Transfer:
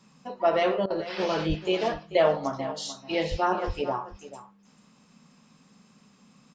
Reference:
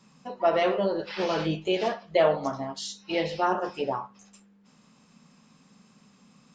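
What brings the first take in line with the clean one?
de-plosive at 1.48/3.3/3.66; interpolate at 0.86, 41 ms; inverse comb 0.439 s -15 dB

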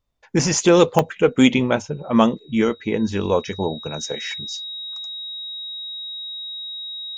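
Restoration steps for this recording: notch 3800 Hz, Q 30; interpolate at 0.99/2.39, 1.2 ms

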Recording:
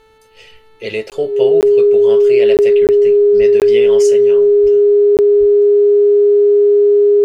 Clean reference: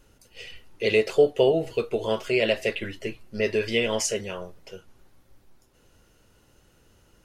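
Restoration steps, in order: de-hum 440 Hz, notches 10; notch 410 Hz, Q 30; 3.38–3.5 HPF 140 Hz 24 dB/oct; 4.62–4.74 HPF 140 Hz 24 dB/oct; 5.39–5.51 HPF 140 Hz 24 dB/oct; interpolate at 1.1/1.61/2.57/2.87/3.6/5.17, 18 ms

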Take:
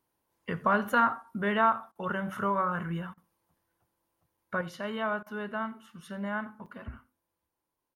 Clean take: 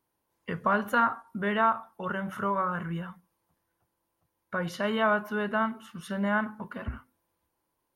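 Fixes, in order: interpolate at 3.23/4.37/6.66, 5 ms; interpolate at 1.92/3.14/5.23, 33 ms; inverse comb 86 ms -21.5 dB; gain 0 dB, from 4.61 s +6.5 dB

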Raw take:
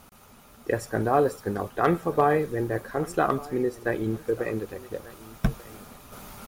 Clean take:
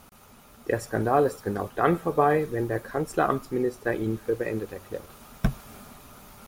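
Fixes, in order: clip repair -9.5 dBFS; inverse comb 1.19 s -20.5 dB; gain correction -5 dB, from 6.12

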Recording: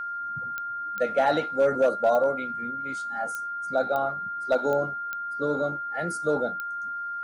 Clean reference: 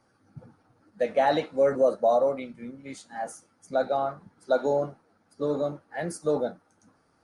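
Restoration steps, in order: clip repair -14.5 dBFS; de-click; notch 1400 Hz, Q 30

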